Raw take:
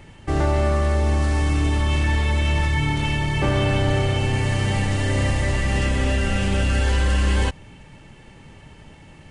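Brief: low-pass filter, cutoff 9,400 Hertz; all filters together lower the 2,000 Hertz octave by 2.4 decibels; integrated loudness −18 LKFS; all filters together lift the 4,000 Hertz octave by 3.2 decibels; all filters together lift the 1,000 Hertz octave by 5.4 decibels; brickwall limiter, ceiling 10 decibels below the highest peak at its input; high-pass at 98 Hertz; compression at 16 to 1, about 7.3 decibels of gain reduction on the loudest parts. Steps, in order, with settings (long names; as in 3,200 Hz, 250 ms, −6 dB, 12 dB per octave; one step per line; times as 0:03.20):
high-pass filter 98 Hz
low-pass filter 9,400 Hz
parametric band 1,000 Hz +8 dB
parametric band 2,000 Hz −7.5 dB
parametric band 4,000 Hz +7.5 dB
downward compressor 16 to 1, threshold −23 dBFS
level +15.5 dB
brickwall limiter −9.5 dBFS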